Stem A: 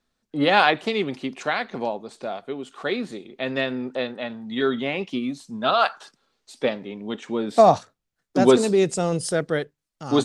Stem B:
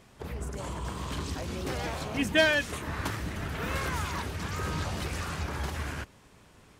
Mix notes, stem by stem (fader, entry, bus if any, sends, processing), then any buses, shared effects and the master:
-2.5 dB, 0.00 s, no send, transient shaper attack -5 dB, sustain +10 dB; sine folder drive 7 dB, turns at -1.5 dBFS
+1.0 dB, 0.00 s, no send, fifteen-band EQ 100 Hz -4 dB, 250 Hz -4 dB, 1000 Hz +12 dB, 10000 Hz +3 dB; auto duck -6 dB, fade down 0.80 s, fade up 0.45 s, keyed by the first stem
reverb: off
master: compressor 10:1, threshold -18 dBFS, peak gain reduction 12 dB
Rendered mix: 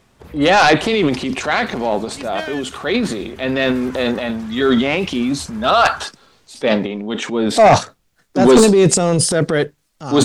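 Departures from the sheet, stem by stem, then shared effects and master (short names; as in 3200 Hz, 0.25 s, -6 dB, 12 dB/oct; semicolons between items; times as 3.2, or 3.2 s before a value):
stem B: missing fifteen-band EQ 100 Hz -4 dB, 250 Hz -4 dB, 1000 Hz +12 dB, 10000 Hz +3 dB; master: missing compressor 10:1, threshold -18 dBFS, peak gain reduction 12 dB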